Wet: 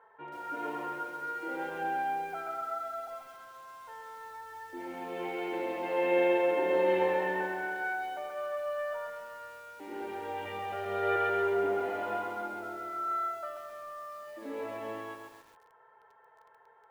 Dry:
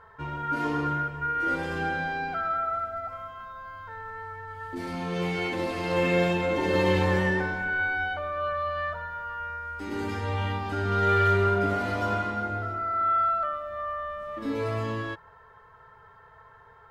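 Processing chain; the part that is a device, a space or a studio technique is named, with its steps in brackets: 10.45–11.16 s: comb 1.7 ms, depth 94%; phone earpiece (cabinet simulation 340–3100 Hz, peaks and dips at 350 Hz +6 dB, 510 Hz +4 dB, 820 Hz +8 dB, 1.2 kHz -6 dB); bit-crushed delay 134 ms, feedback 55%, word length 8-bit, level -4 dB; trim -8.5 dB

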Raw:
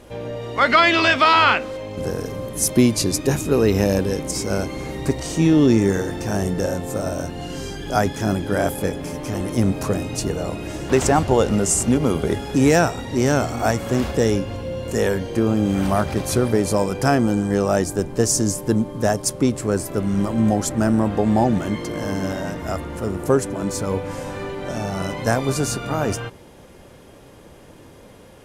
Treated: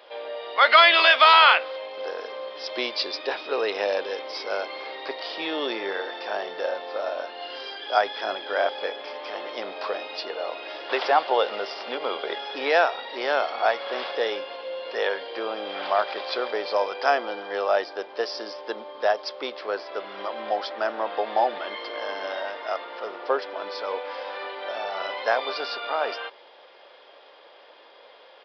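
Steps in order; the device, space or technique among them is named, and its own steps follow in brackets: musical greeting card (resampled via 11.025 kHz; high-pass 540 Hz 24 dB/octave; peaking EQ 3.4 kHz +6 dB 0.24 oct)

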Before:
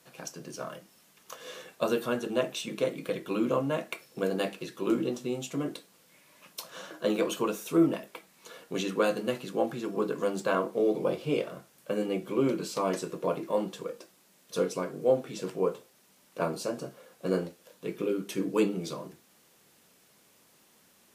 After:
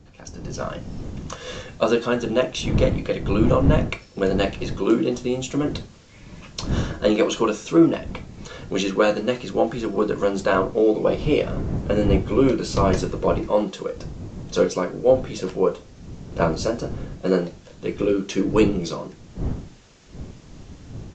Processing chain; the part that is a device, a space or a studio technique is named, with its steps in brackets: smartphone video outdoors (wind noise 180 Hz -38 dBFS; level rider gain up to 12.5 dB; trim -2.5 dB; AAC 64 kbps 16 kHz)

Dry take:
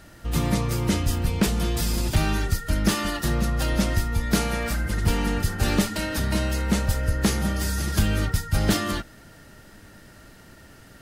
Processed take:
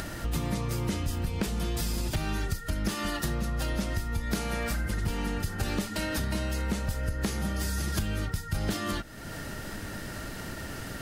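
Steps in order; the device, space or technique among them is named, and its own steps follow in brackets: upward and downward compression (upward compressor, threshold -24 dBFS; compression, threshold -25 dBFS, peak gain reduction 10 dB); trim -1.5 dB

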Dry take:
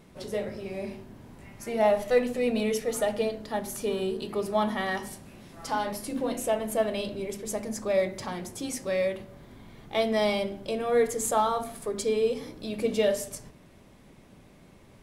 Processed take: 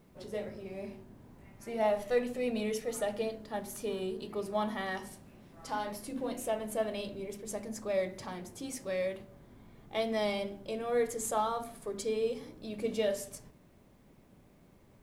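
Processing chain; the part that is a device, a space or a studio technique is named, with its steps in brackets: plain cassette with noise reduction switched in (tape noise reduction on one side only decoder only; wow and flutter 20 cents; white noise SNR 42 dB); trim -6.5 dB

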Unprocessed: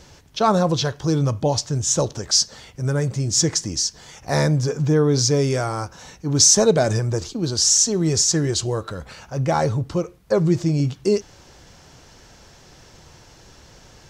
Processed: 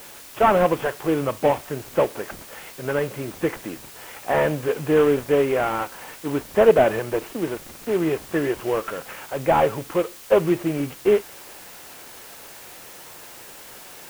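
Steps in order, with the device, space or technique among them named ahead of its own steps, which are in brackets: army field radio (band-pass 370–3200 Hz; CVSD coder 16 kbps; white noise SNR 20 dB); trim +5 dB

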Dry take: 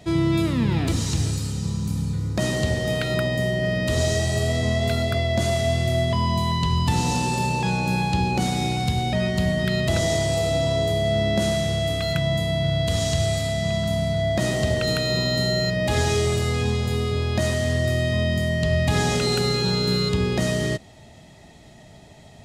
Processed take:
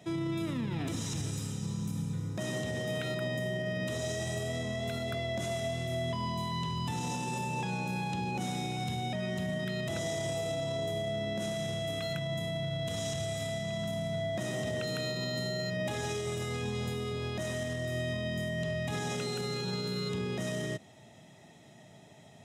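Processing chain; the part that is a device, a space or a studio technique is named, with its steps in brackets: PA system with an anti-feedback notch (high-pass 110 Hz 24 dB/octave; Butterworth band-stop 4.5 kHz, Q 6.2; peak limiter -19 dBFS, peak gain reduction 8.5 dB); trim -7 dB

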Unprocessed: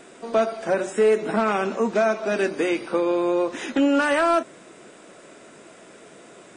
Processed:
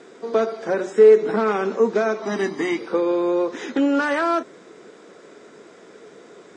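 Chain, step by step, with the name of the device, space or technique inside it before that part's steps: 2.22–2.78 s: comb 1 ms, depth 88%; car door speaker (cabinet simulation 84–6600 Hz, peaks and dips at 130 Hz -5 dB, 440 Hz +8 dB, 630 Hz -5 dB, 2.7 kHz -7 dB)

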